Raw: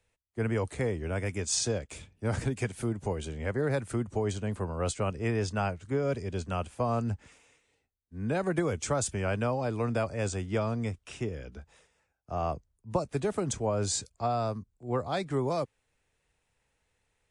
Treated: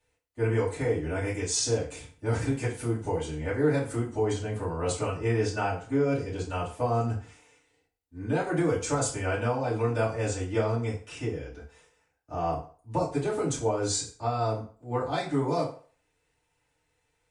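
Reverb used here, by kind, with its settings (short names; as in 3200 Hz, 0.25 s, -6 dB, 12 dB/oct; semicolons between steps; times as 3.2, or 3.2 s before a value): FDN reverb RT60 0.43 s, low-frequency decay 0.75×, high-frequency decay 0.8×, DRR -9 dB; gain -7 dB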